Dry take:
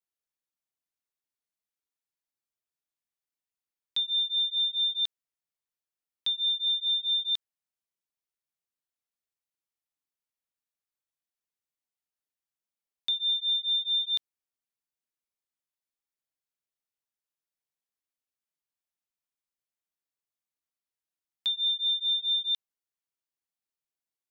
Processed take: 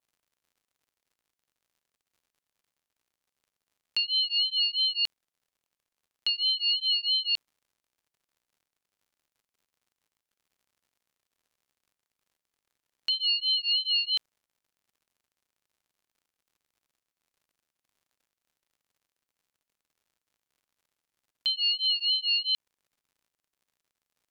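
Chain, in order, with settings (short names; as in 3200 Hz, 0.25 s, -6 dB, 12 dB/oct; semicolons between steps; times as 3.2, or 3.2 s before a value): crackle 130/s -62 dBFS; vibrato 0.48 Hz 6.9 cents; ring modulator with a swept carrier 660 Hz, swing 20%, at 3 Hz; gain +4 dB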